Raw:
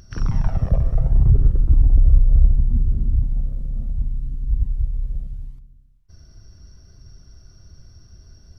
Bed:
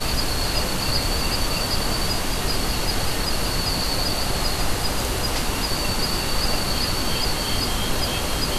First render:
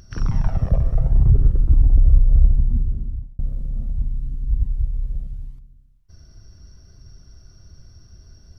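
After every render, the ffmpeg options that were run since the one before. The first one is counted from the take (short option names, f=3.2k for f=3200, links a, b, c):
-filter_complex "[0:a]asplit=2[a][b];[a]atrim=end=3.39,asetpts=PTS-STARTPTS,afade=t=out:st=2.67:d=0.72[c];[b]atrim=start=3.39,asetpts=PTS-STARTPTS,afade=t=in:d=0.004:c=hsin[d];[c][d]concat=n=2:v=0:a=1"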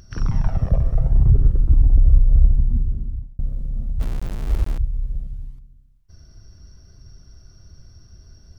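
-filter_complex "[0:a]asettb=1/sr,asplit=3[a][b][c];[a]atrim=end=4.004[d];[b]atrim=start=4:end=4.78,asetpts=PTS-STARTPTS,afade=t=in:d=0.004:c=qsin,afade=t=out:st=0.776:d=0.004:c=qsin,aeval=exprs='val(0)*gte(abs(val(0)),0.0501)':c=same[e];[c]atrim=start=4.776[f];[d][e]acrossfade=d=0.004:c1=hsin:c2=qsin[g];[g][f]acrossfade=d=0.004:c1=qsin:c2=hsin"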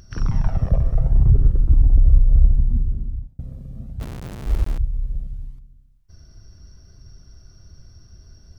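-filter_complex "[0:a]asettb=1/sr,asplit=3[a][b][c];[a]atrim=end=3.274[d];[b]atrim=start=3.27:end=4.46,asetpts=PTS-STARTPTS,afade=t=in:d=0.004:c=qsin,afade=t=out:st=1.186:d=0.004:c=qsin,highpass=73[e];[c]atrim=start=4.456[f];[d][e]acrossfade=d=0.004:c1=hsin:c2=qsin[g];[g][f]acrossfade=d=0.004:c1=qsin:c2=hsin"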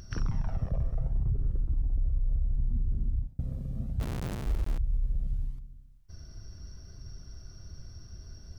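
-af "areverse,acompressor=threshold=-20dB:ratio=6,areverse,alimiter=limit=-21.5dB:level=0:latency=1:release=117"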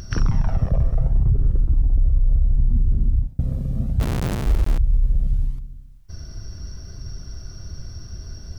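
-af "volume=11dB"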